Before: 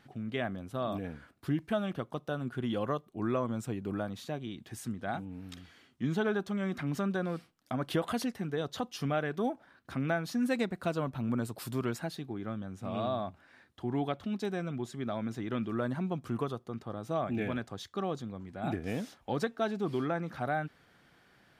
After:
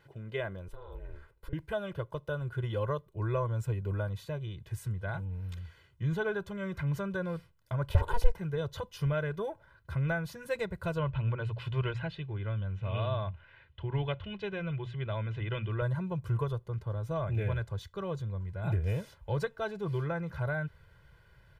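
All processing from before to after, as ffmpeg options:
ffmpeg -i in.wav -filter_complex "[0:a]asettb=1/sr,asplit=3[link_01][link_02][link_03];[link_01]atrim=end=0.684[link_04];[link_02]atrim=start=0.68:end=1.53,asetpts=PTS-STARTPTS,afade=type=in:duration=0.004:curve=qsin,afade=type=out:start_time=0.846:duration=0.004:curve=qsin,acompressor=threshold=-40dB:ratio=16:attack=3.2:release=140:knee=1:detection=peak,aeval=exprs='val(0)*sin(2*PI*140*n/s)':channel_layout=same[link_05];[link_03]atrim=start=1.526[link_06];[link_04][link_05]acrossfade=duration=0.004:curve1=hsin:curve2=qsin[link_07];[link_07][link_06]acrossfade=duration=0.004:curve1=qsin:curve2=hsin,asettb=1/sr,asplit=3[link_08][link_09][link_10];[link_08]atrim=end=7.894[link_11];[link_09]atrim=start=7.89:end=8.38,asetpts=PTS-STARTPTS,afade=type=in:duration=0.004:curve=qsin,afade=type=out:start_time=0.486:duration=0.004:curve=qsin,equalizer=frequency=580:width_type=o:width=0.85:gain=12.5,volume=22dB,asoftclip=hard,volume=-22dB,aeval=exprs='val(0)*sin(2*PI*240*n/s)':channel_layout=same[link_12];[link_10]atrim=start=8.376[link_13];[link_11][link_12]acrossfade=duration=0.004:curve1=hsin:curve2=qsin[link_14];[link_14][link_13]acrossfade=duration=0.004:curve1=qsin:curve2=hsin,asettb=1/sr,asplit=3[link_15][link_16][link_17];[link_15]atrim=end=10.984[link_18];[link_16]atrim=start=10.98:end=15.82,asetpts=PTS-STARTPTS,afade=type=in:duration=0.004:curve=qsin,afade=type=out:start_time=4.836:duration=0.004:curve=qsin,lowpass=frequency=2900:width_type=q:width=3.5,bandreject=frequency=60:width_type=h:width=6,bandreject=frequency=120:width_type=h:width=6,bandreject=frequency=180:width_type=h:width=6[link_19];[link_17]atrim=start=15.816[link_20];[link_18][link_19]acrossfade=duration=0.004:curve1=hsin:curve2=qsin[link_21];[link_21][link_20]acrossfade=duration=0.004:curve1=qsin:curve2=hsin,equalizer=frequency=6000:width_type=o:width=1.9:gain=-6.5,aecho=1:1:2:0.97,asubboost=boost=8:cutoff=100,volume=-2.5dB" out.wav

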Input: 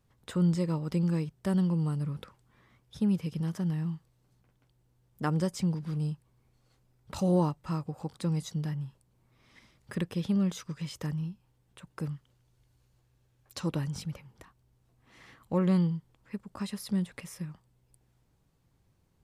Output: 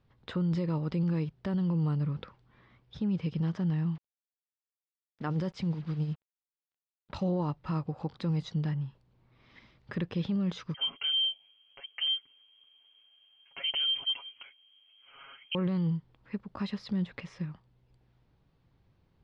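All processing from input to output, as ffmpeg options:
ffmpeg -i in.wav -filter_complex "[0:a]asettb=1/sr,asplit=3[link_01][link_02][link_03];[link_01]atrim=end=3.954[link_04];[link_02]atrim=start=3.95:end=7.25,asetpts=PTS-STARTPTS,afade=type=in:duration=0.004:curve=qsin,afade=type=out:start_time=3.296:duration=0.004:curve=qsin,tremolo=f=9.7:d=0.57,acrusher=bits=8:mix=0:aa=0.5[link_05];[link_03]atrim=start=7.246[link_06];[link_04][link_05]acrossfade=duration=0.004:curve1=hsin:curve2=qsin[link_07];[link_07][link_06]acrossfade=duration=0.004:curve1=qsin:curve2=hsin,asettb=1/sr,asplit=3[link_08][link_09][link_10];[link_08]atrim=end=10.744[link_11];[link_09]atrim=start=10.74:end=15.55,asetpts=PTS-STARTPTS,afade=type=in:duration=0.004:curve=qsin,afade=type=out:start_time=4.806:duration=0.004:curve=qsin,equalizer=frequency=1500:width_type=o:width=0.22:gain=-7.5,aecho=1:1:7.3:0.85,atrim=end_sample=212121,lowpass=frequency=2800:width_type=q:width=0.5098,lowpass=frequency=2800:width_type=q:width=0.6013,lowpass=frequency=2800:width_type=q:width=0.9,lowpass=frequency=2800:width_type=q:width=2.563,afreqshift=-3300[link_12];[link_10]atrim=start=15.546[link_13];[link_11][link_12]acrossfade=duration=0.004:curve1=hsin:curve2=qsin[link_14];[link_14][link_13]acrossfade=duration=0.004:curve1=qsin:curve2=hsin,lowpass=frequency=4400:width=0.5412,lowpass=frequency=4400:width=1.3066,alimiter=level_in=1.5dB:limit=-24dB:level=0:latency=1:release=19,volume=-1.5dB,volume=2dB" out.wav

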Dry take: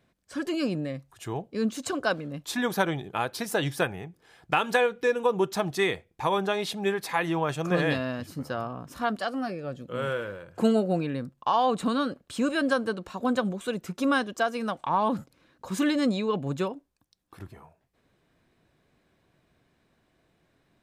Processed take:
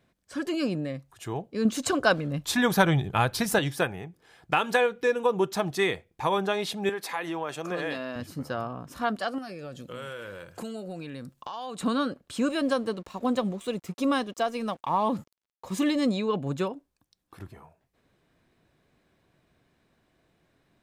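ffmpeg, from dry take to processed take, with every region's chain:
ffmpeg -i in.wav -filter_complex "[0:a]asettb=1/sr,asplit=3[link_01][link_02][link_03];[link_01]atrim=end=1.654[link_04];[link_02]atrim=start=1.65:end=3.59,asetpts=PTS-STARTPTS,afade=type=in:duration=0.004:curve=qsin,afade=type=out:start_time=1.936:duration=0.004:curve=qsin,asubboost=boost=8:cutoff=150,acontrast=24[link_05];[link_03]atrim=start=3.586[link_06];[link_04][link_05]acrossfade=duration=0.004:curve1=hsin:curve2=qsin[link_07];[link_07][link_06]acrossfade=duration=0.004:curve1=qsin:curve2=hsin,asettb=1/sr,asplit=3[link_08][link_09][link_10];[link_08]atrim=end=6.894[link_11];[link_09]atrim=start=6.89:end=8.16,asetpts=PTS-STARTPTS,afade=type=in:duration=0.004:curve=qsin,afade=type=out:start_time=1.266:duration=0.004:curve=qsin,highpass=260,acompressor=threshold=-30dB:ratio=2:attack=3.2:release=140:knee=1:detection=peak[link_12];[link_10]atrim=start=8.156[link_13];[link_11][link_12]acrossfade=duration=0.004:curve1=hsin:curve2=qsin[link_14];[link_14][link_13]acrossfade=duration=0.004:curve1=qsin:curve2=hsin,asettb=1/sr,asplit=3[link_15][link_16][link_17];[link_15]atrim=end=9.384[link_18];[link_16]atrim=start=9.38:end=11.81,asetpts=PTS-STARTPTS,afade=type=in:duration=0.004:curve=qsin,afade=type=out:start_time=2.426:duration=0.004:curve=qsin,highshelf=frequency=2600:gain=11,acompressor=threshold=-36dB:ratio=4:attack=3.2:release=140:knee=1:detection=peak[link_19];[link_17]atrim=start=11.806[link_20];[link_18][link_19]acrossfade=duration=0.004:curve1=hsin:curve2=qsin[link_21];[link_21][link_20]acrossfade=duration=0.004:curve1=qsin:curve2=hsin,asettb=1/sr,asplit=3[link_22][link_23][link_24];[link_22]atrim=end=12.514[link_25];[link_23]atrim=start=12.51:end=16.11,asetpts=PTS-STARTPTS,afade=type=in:duration=0.004:curve=qsin,afade=type=out:start_time=3.596:duration=0.004:curve=qsin,equalizer=frequency=1500:width_type=o:width=0.21:gain=-12.5,aeval=exprs='sgn(val(0))*max(abs(val(0))-0.00188,0)':channel_layout=same[link_26];[link_24]atrim=start=16.106[link_27];[link_25][link_26]acrossfade=duration=0.004:curve1=hsin:curve2=qsin[link_28];[link_28][link_27]acrossfade=duration=0.004:curve1=qsin:curve2=hsin" out.wav

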